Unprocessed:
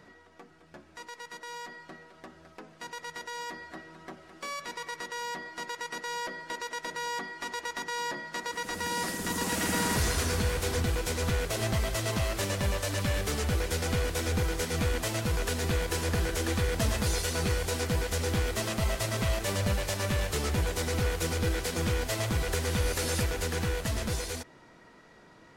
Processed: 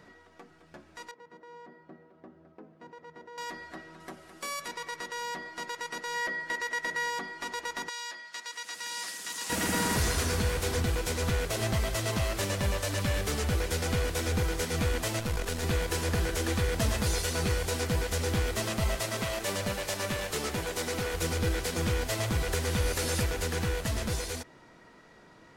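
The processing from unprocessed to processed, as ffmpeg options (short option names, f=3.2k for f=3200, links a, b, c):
-filter_complex "[0:a]asettb=1/sr,asplit=3[a][b][c];[a]atrim=end=1.114[d];[b]atrim=start=1.11:end=3.38,asetpts=PTS-STARTPTS,afade=t=in:d=0.004:c=qsin,afade=t=out:st=2.266:d=0.004:c=qsin,bandpass=f=260:t=q:w=0.65[e];[c]atrim=start=3.376[f];[d][e]acrossfade=d=0.004:c1=hsin:c2=qsin[g];[g][f]acrossfade=d=0.004:c1=qsin:c2=hsin,asettb=1/sr,asplit=3[h][i][j];[h]atrim=end=4.004[k];[i]atrim=start=4:end=4.68,asetpts=PTS-STARTPTS,afade=t=in:d=0.004:c=qsin,afade=t=out:st=0.676:d=0.004:c=qsin,equalizer=f=11k:w=0.83:g=11[l];[j]atrim=start=4.676[m];[k][l]acrossfade=d=0.004:c1=hsin:c2=qsin[n];[n][m]acrossfade=d=0.004:c1=qsin:c2=hsin,asettb=1/sr,asplit=3[o][p][q];[o]atrim=end=6.144[r];[p]atrim=start=6.14:end=7.1,asetpts=PTS-STARTPTS,afade=t=in:d=0.004:c=qsin,afade=t=out:st=0.956:d=0.004:c=qsin,equalizer=f=1.9k:t=o:w=0.26:g=8.5[s];[q]atrim=start=7.096[t];[r][s]acrossfade=d=0.004:c1=hsin:c2=qsin[u];[u][t]acrossfade=d=0.004:c1=qsin:c2=hsin,asettb=1/sr,asplit=3[v][w][x];[v]atrim=end=7.894[y];[w]atrim=start=7.89:end=9.5,asetpts=PTS-STARTPTS,afade=t=in:d=0.004:c=qsin,afade=t=out:st=1.606:d=0.004:c=qsin,bandpass=f=5k:t=q:w=0.55[z];[x]atrim=start=9.496[aa];[y][z]acrossfade=d=0.004:c1=hsin:c2=qsin[ab];[ab][aa]acrossfade=d=0.004:c1=qsin:c2=hsin,asettb=1/sr,asplit=3[ac][ad][ae];[ac]atrim=end=15.194[af];[ad]atrim=start=15.19:end=15.63,asetpts=PTS-STARTPTS,afade=t=in:d=0.004:c=qsin,afade=t=out:st=0.436:d=0.004:c=qsin,aeval=exprs='if(lt(val(0),0),0.447*val(0),val(0))':c=same[ag];[ae]atrim=start=15.626[ah];[af][ag]acrossfade=d=0.004:c1=hsin:c2=qsin[ai];[ai][ah]acrossfade=d=0.004:c1=qsin:c2=hsin,asettb=1/sr,asplit=3[aj][ak][al];[aj]atrim=end=19.004[am];[ak]atrim=start=19:end=21.14,asetpts=PTS-STARTPTS,afade=t=in:d=0.004:c=qsin,afade=t=out:st=2.136:d=0.004:c=qsin,equalizer=f=60:w=0.73:g=-13.5[an];[al]atrim=start=21.136[ao];[am][an]acrossfade=d=0.004:c1=hsin:c2=qsin[ap];[ap][ao]acrossfade=d=0.004:c1=qsin:c2=hsin"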